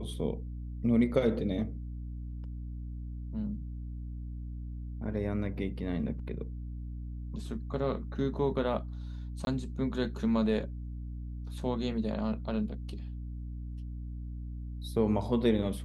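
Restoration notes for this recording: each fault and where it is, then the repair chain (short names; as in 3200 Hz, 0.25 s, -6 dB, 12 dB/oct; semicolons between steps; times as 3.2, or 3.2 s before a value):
hum 60 Hz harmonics 5 -39 dBFS
9.45–9.47 gap 21 ms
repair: de-hum 60 Hz, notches 5; interpolate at 9.45, 21 ms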